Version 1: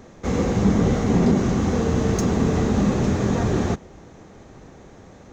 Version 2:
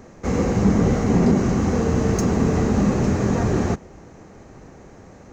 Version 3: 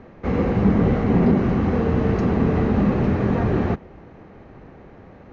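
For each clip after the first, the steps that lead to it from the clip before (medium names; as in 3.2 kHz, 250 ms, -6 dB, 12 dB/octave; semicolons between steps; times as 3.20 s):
peaking EQ 3.5 kHz -8.5 dB 0.33 oct; trim +1 dB
low-pass 3.5 kHz 24 dB/octave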